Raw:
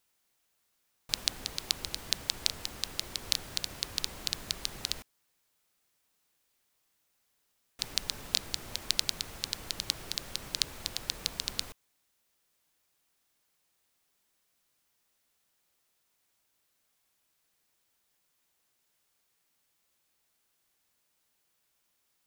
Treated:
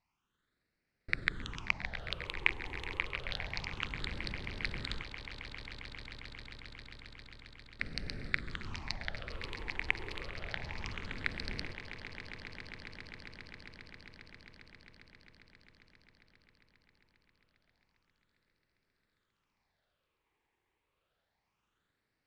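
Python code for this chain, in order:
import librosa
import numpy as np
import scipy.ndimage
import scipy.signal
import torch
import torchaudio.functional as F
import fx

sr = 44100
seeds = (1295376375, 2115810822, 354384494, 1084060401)

y = fx.pitch_trill(x, sr, semitones=-10.5, every_ms=332)
y = fx.high_shelf(y, sr, hz=6100.0, db=-8.5)
y = fx.phaser_stages(y, sr, stages=8, low_hz=180.0, high_hz=1000.0, hz=0.28, feedback_pct=25)
y = fx.spacing_loss(y, sr, db_at_10k=24)
y = fx.echo_swell(y, sr, ms=134, loudest=8, wet_db=-16.5)
y = y * librosa.db_to_amplitude(5.5)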